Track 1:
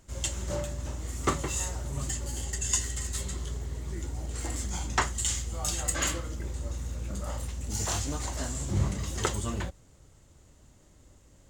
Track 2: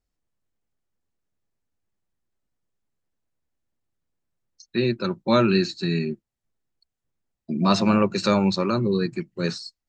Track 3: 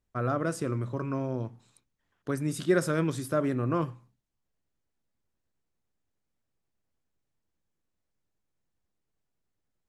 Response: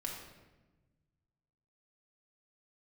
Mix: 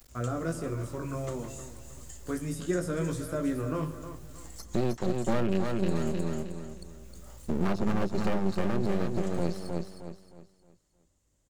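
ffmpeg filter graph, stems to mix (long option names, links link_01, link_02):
-filter_complex "[0:a]volume=-17dB,asplit=2[link_01][link_02];[link_02]volume=-10.5dB[link_03];[1:a]afwtdn=0.0447,acompressor=mode=upward:threshold=-26dB:ratio=2.5,aeval=exprs='max(val(0),0)':channel_layout=same,volume=2.5dB,asplit=3[link_04][link_05][link_06];[link_05]volume=-6.5dB[link_07];[2:a]flanger=delay=17:depth=4:speed=0.34,volume=-2dB,asplit=3[link_08][link_09][link_10];[link_09]volume=-8dB[link_11];[link_10]volume=-11.5dB[link_12];[link_06]apad=whole_len=506799[link_13];[link_01][link_13]sidechaincompress=threshold=-23dB:ratio=8:attack=16:release=1020[link_14];[3:a]atrim=start_sample=2205[link_15];[link_11][link_15]afir=irnorm=-1:irlink=0[link_16];[link_03][link_07][link_12]amix=inputs=3:normalize=0,aecho=0:1:311|622|933|1244|1555:1|0.34|0.116|0.0393|0.0134[link_17];[link_14][link_04][link_08][link_16][link_17]amix=inputs=5:normalize=0,highshelf=frequency=5400:gain=7.5,acrossover=split=670|1600[link_18][link_19][link_20];[link_18]acompressor=threshold=-23dB:ratio=4[link_21];[link_19]acompressor=threshold=-43dB:ratio=4[link_22];[link_20]acompressor=threshold=-44dB:ratio=4[link_23];[link_21][link_22][link_23]amix=inputs=3:normalize=0"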